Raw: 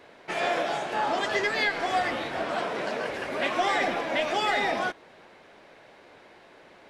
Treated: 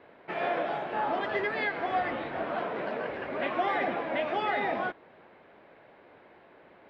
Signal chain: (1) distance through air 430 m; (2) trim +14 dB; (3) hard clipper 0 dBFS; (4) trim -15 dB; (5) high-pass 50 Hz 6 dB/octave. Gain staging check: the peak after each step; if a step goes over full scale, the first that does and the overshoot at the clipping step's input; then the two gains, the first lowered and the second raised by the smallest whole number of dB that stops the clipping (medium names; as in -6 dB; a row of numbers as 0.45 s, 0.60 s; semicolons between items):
-16.5 dBFS, -2.5 dBFS, -2.5 dBFS, -17.5 dBFS, -17.5 dBFS; nothing clips